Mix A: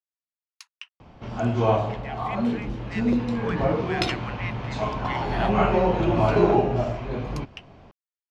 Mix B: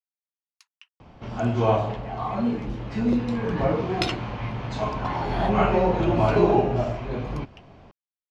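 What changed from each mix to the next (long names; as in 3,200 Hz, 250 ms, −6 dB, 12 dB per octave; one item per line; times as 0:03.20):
speech −10.5 dB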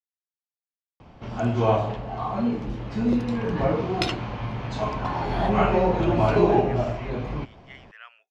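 speech: entry +2.60 s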